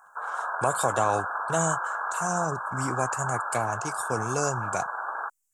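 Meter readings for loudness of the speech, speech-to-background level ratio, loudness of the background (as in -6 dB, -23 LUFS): -30.0 LUFS, 1.5 dB, -31.5 LUFS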